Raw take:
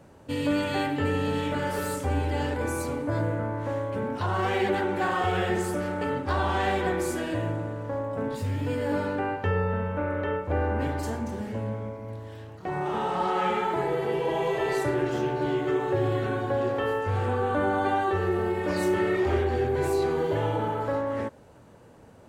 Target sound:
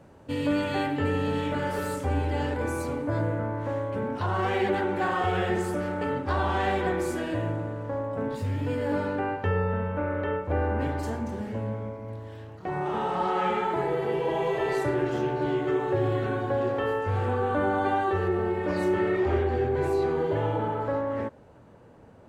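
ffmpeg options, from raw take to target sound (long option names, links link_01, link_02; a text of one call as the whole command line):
ffmpeg -i in.wav -af "asetnsamples=nb_out_samples=441:pad=0,asendcmd='18.28 highshelf g -12',highshelf=frequency=4200:gain=-6" out.wav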